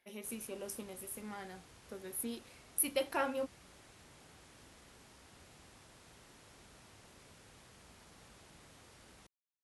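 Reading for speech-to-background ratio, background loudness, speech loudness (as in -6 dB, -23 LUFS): 20.0 dB, -59.0 LUFS, -39.0 LUFS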